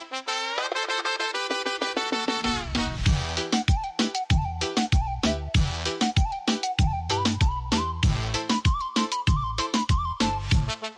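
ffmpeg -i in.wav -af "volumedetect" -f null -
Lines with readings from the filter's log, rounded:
mean_volume: -25.2 dB
max_volume: -9.3 dB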